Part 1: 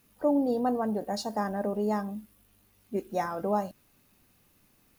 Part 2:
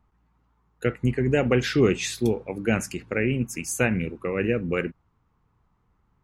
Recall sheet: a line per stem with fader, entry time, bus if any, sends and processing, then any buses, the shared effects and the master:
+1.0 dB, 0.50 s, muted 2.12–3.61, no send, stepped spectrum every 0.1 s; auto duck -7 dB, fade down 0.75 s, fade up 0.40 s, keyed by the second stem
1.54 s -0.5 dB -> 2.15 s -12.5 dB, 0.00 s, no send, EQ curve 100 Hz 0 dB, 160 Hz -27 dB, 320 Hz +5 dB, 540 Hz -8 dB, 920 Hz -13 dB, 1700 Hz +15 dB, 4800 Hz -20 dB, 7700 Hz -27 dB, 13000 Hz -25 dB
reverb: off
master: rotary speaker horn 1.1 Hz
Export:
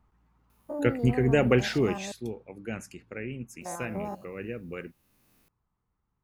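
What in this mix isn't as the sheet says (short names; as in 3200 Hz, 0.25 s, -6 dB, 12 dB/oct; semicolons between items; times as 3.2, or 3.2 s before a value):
stem 2: missing EQ curve 100 Hz 0 dB, 160 Hz -27 dB, 320 Hz +5 dB, 540 Hz -8 dB, 920 Hz -13 dB, 1700 Hz +15 dB, 4800 Hz -20 dB, 7700 Hz -27 dB, 13000 Hz -25 dB; master: missing rotary speaker horn 1.1 Hz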